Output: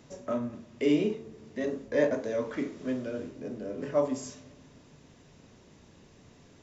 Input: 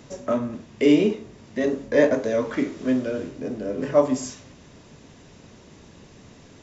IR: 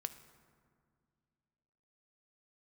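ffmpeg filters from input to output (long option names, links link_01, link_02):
-filter_complex "[0:a]asplit=2[link_01][link_02];[1:a]atrim=start_sample=2205,lowpass=1200,adelay=33[link_03];[link_02][link_03]afir=irnorm=-1:irlink=0,volume=-7dB[link_04];[link_01][link_04]amix=inputs=2:normalize=0,volume=-8.5dB"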